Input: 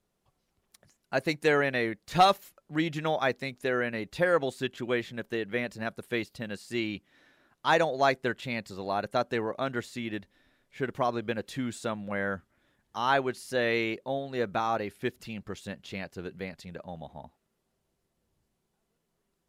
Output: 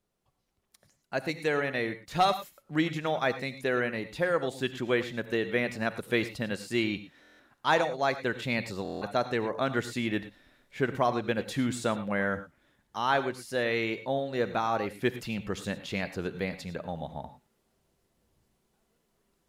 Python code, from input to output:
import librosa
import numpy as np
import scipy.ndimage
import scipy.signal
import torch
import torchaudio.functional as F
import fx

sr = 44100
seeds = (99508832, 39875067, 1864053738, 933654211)

y = fx.rider(x, sr, range_db=5, speed_s=0.5)
y = fx.rev_gated(y, sr, seeds[0], gate_ms=130, shape='rising', drr_db=11.5)
y = fx.buffer_glitch(y, sr, at_s=(7.21, 8.83), block=1024, repeats=7)